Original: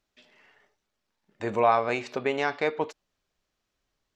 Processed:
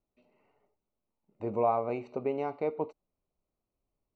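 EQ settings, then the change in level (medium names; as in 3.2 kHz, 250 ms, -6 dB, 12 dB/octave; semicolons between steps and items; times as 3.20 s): boxcar filter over 26 samples; -2.5 dB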